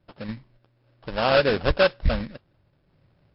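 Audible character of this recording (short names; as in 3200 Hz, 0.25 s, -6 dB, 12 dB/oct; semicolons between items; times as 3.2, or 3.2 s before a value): a quantiser's noise floor 12-bit, dither none; random-step tremolo; aliases and images of a low sample rate 2100 Hz, jitter 20%; MP3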